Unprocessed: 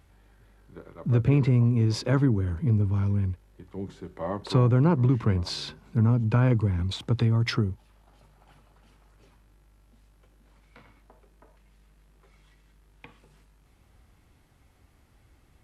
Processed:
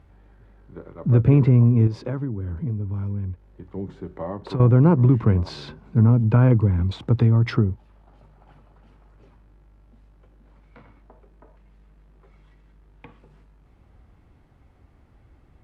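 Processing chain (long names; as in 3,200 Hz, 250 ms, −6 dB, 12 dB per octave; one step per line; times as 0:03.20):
0:01.87–0:04.60: downward compressor 4 to 1, threshold −32 dBFS, peak gain reduction 13.5 dB
low-pass filter 1,100 Hz 6 dB per octave
level +6 dB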